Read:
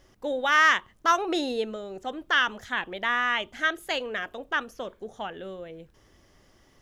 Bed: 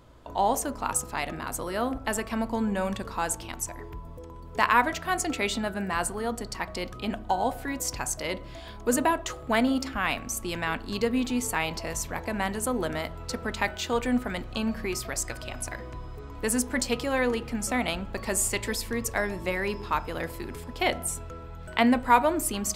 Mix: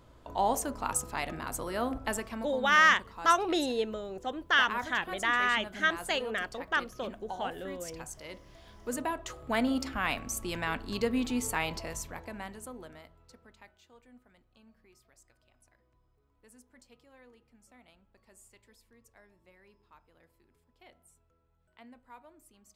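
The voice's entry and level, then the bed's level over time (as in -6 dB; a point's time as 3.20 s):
2.20 s, -2.0 dB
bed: 2.10 s -3.5 dB
2.57 s -13.5 dB
8.56 s -13.5 dB
9.78 s -3.5 dB
11.70 s -3.5 dB
13.94 s -32 dB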